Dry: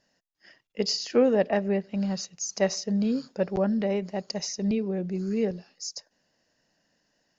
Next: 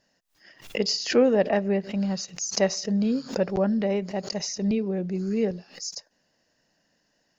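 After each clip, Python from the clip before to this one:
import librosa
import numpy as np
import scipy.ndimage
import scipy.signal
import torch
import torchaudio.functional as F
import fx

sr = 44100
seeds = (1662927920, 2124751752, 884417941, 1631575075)

y = fx.pre_swell(x, sr, db_per_s=150.0)
y = F.gain(torch.from_numpy(y), 1.5).numpy()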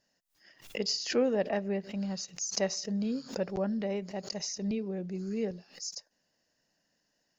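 y = fx.high_shelf(x, sr, hz=5200.0, db=6.0)
y = F.gain(torch.from_numpy(y), -8.0).numpy()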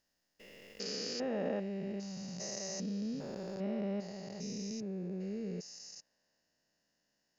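y = fx.spec_steps(x, sr, hold_ms=400)
y = F.gain(torch.from_numpy(y), -2.5).numpy()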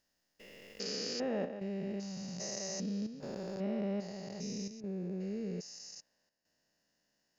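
y = fx.chopper(x, sr, hz=0.62, depth_pct=65, duty_pct=90)
y = F.gain(torch.from_numpy(y), 1.0).numpy()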